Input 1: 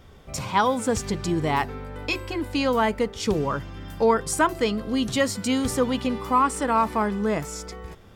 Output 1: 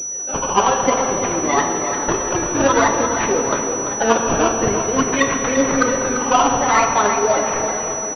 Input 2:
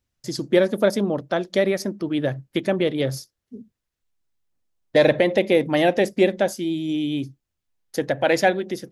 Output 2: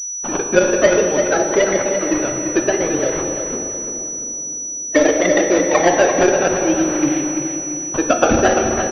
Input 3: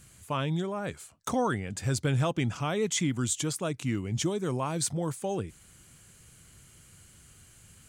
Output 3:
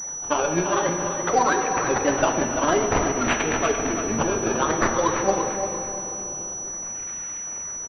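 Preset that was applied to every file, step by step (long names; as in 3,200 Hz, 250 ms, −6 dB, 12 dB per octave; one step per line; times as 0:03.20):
spectral magnitudes quantised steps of 30 dB
high-pass filter 380 Hz 12 dB per octave
in parallel at +2.5 dB: downward compressor, threshold −31 dBFS
on the sum: phase shifter 1.7 Hz, delay 3.8 ms, feedback 69%
sample-and-hold swept by an LFO 15×, swing 100% 0.52 Hz
on a send: repeating echo 342 ms, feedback 37%, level −9 dB
on the sum: rectangular room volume 170 cubic metres, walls hard, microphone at 0.3 metres
boost into a limiter +2.5 dB
switching amplifier with a slow clock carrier 5,900 Hz
level −1 dB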